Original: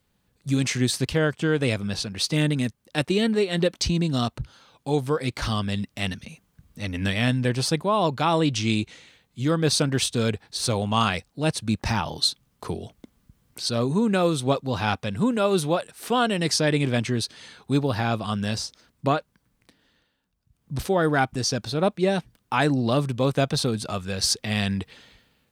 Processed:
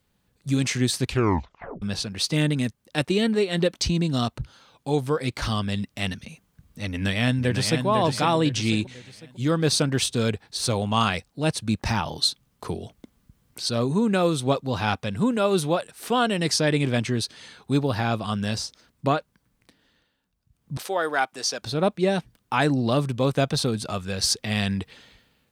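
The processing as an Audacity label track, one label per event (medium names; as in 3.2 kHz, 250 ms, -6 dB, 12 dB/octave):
1.020000	1.020000	tape stop 0.80 s
6.880000	7.860000	echo throw 500 ms, feedback 40%, level -6 dB
20.770000	21.620000	high-pass 540 Hz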